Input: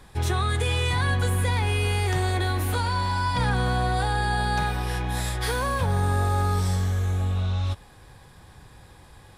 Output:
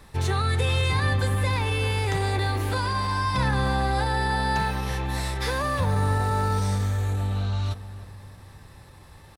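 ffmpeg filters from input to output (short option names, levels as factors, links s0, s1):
-filter_complex "[0:a]asetrate=46722,aresample=44100,atempo=0.943874,acrossover=split=8600[s0][s1];[s1]acompressor=threshold=0.00398:ratio=4:attack=1:release=60[s2];[s0][s2]amix=inputs=2:normalize=0,asplit=2[s3][s4];[s4]adelay=309,lowpass=f=1100:p=1,volume=0.251,asplit=2[s5][s6];[s6]adelay=309,lowpass=f=1100:p=1,volume=0.5,asplit=2[s7][s8];[s8]adelay=309,lowpass=f=1100:p=1,volume=0.5,asplit=2[s9][s10];[s10]adelay=309,lowpass=f=1100:p=1,volume=0.5,asplit=2[s11][s12];[s12]adelay=309,lowpass=f=1100:p=1,volume=0.5[s13];[s3][s5][s7][s9][s11][s13]amix=inputs=6:normalize=0"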